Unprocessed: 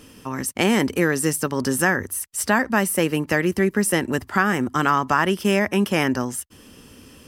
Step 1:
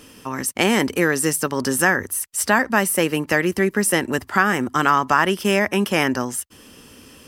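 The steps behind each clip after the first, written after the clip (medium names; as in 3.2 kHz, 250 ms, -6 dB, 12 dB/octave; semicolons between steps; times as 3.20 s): bass shelf 280 Hz -6 dB; trim +3 dB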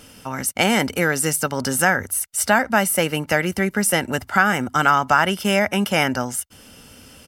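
comb 1.4 ms, depth 49%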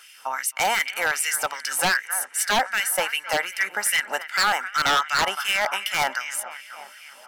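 feedback echo behind a low-pass 266 ms, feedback 63%, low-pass 3.3 kHz, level -15 dB; LFO high-pass sine 2.6 Hz 760–2300 Hz; wavefolder -10.5 dBFS; trim -3 dB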